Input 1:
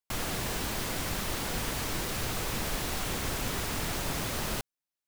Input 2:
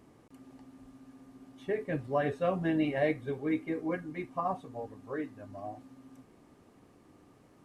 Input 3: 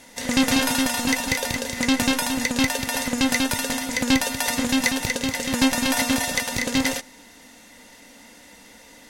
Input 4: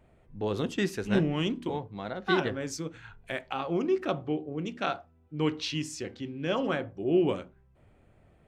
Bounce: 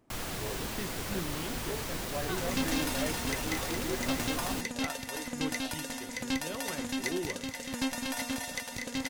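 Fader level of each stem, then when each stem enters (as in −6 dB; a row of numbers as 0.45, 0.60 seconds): −4.0, −8.5, −13.0, −11.5 decibels; 0.00, 0.00, 2.20, 0.00 seconds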